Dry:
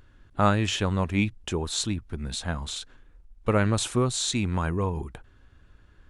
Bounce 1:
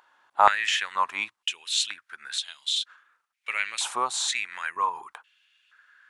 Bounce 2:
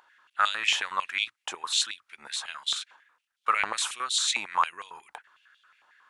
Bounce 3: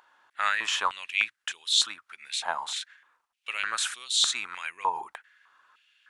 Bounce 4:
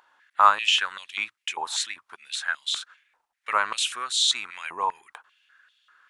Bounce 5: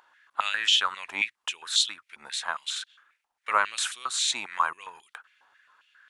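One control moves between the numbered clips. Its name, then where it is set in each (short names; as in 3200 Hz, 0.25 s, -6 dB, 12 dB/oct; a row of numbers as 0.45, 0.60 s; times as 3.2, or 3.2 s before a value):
stepped high-pass, rate: 2.1, 11, 3.3, 5.1, 7.4 Hz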